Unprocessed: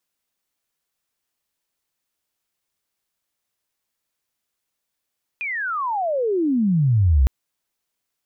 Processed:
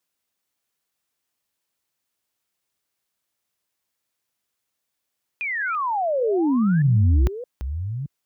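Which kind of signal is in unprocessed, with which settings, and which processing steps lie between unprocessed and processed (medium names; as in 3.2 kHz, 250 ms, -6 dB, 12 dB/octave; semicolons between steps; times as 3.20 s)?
sweep logarithmic 2.5 kHz -> 60 Hz -24 dBFS -> -11.5 dBFS 1.86 s
chunks repeated in reverse 620 ms, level -11 dB; high-pass 53 Hz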